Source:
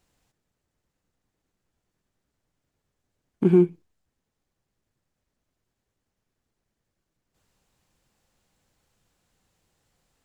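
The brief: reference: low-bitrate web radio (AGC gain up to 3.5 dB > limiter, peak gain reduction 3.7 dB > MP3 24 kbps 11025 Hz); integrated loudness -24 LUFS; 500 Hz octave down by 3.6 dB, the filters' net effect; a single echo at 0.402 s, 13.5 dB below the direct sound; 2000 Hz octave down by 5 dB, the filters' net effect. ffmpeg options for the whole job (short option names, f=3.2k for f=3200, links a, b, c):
-af "equalizer=f=500:t=o:g=-6.5,equalizer=f=2k:t=o:g=-6.5,aecho=1:1:402:0.211,dynaudnorm=m=3.5dB,alimiter=limit=-13.5dB:level=0:latency=1,volume=4dB" -ar 11025 -c:a libmp3lame -b:a 24k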